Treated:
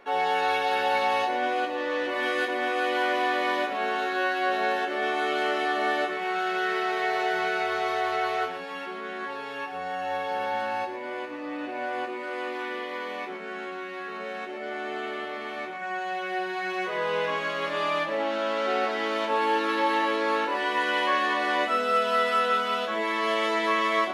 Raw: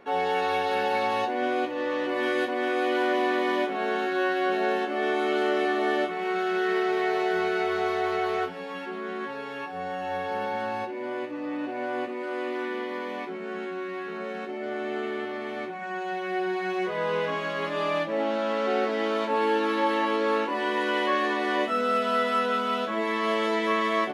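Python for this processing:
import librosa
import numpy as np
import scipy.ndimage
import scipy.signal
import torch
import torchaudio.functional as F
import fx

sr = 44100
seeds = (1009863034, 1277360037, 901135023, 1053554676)

p1 = fx.peak_eq(x, sr, hz=160.0, db=-10.0, octaves=2.7)
p2 = p1 + fx.echo_single(p1, sr, ms=115, db=-9.5, dry=0)
y = p2 * librosa.db_to_amplitude(2.5)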